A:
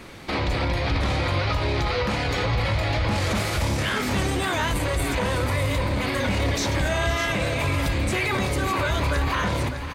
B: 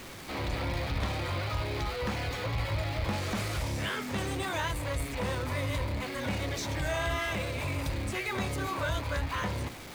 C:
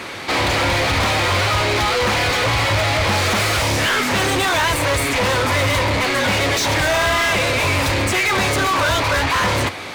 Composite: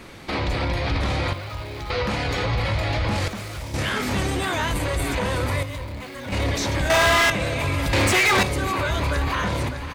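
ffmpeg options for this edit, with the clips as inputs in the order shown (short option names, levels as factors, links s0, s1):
-filter_complex "[1:a]asplit=3[s0][s1][s2];[2:a]asplit=2[s3][s4];[0:a]asplit=6[s5][s6][s7][s8][s9][s10];[s5]atrim=end=1.332[s11];[s0]atrim=start=1.328:end=1.902[s12];[s6]atrim=start=1.898:end=3.282[s13];[s1]atrim=start=3.278:end=3.742[s14];[s7]atrim=start=3.738:end=5.632[s15];[s2]atrim=start=5.628:end=6.322[s16];[s8]atrim=start=6.318:end=6.902[s17];[s3]atrim=start=6.898:end=7.302[s18];[s9]atrim=start=7.298:end=7.932[s19];[s4]atrim=start=7.928:end=8.432[s20];[s10]atrim=start=8.428[s21];[s11][s12]acrossfade=d=0.004:c1=hsin:c2=hsin[s22];[s22][s13]acrossfade=d=0.004:c1=hsin:c2=hsin[s23];[s23][s14]acrossfade=d=0.004:c1=hsin:c2=hsin[s24];[s24][s15]acrossfade=d=0.004:c1=hsin:c2=hsin[s25];[s25][s16]acrossfade=d=0.004:c1=hsin:c2=hsin[s26];[s26][s17]acrossfade=d=0.004:c1=hsin:c2=hsin[s27];[s27][s18]acrossfade=d=0.004:c1=hsin:c2=hsin[s28];[s28][s19]acrossfade=d=0.004:c1=hsin:c2=hsin[s29];[s29][s20]acrossfade=d=0.004:c1=hsin:c2=hsin[s30];[s30][s21]acrossfade=d=0.004:c1=hsin:c2=hsin"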